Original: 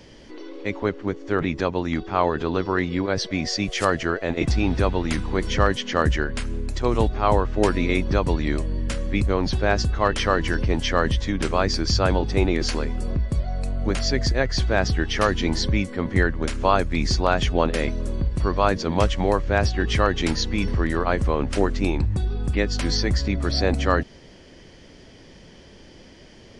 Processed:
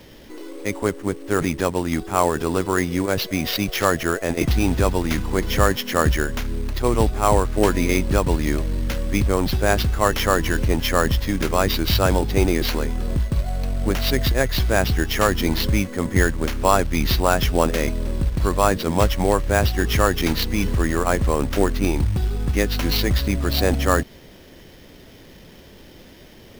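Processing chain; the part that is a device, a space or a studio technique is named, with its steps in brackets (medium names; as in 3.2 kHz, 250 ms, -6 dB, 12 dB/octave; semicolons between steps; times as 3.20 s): early companding sampler (sample-rate reducer 8.5 kHz, jitter 0%; companded quantiser 6-bit); trim +2 dB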